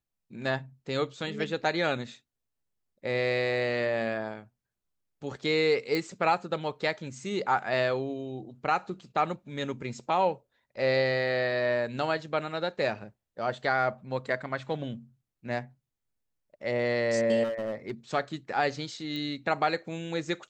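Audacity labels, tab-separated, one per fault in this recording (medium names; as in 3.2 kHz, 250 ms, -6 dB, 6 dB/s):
5.950000	5.950000	pop -17 dBFS
17.430000	17.910000	clipped -28 dBFS
19.160000	19.160000	pop -24 dBFS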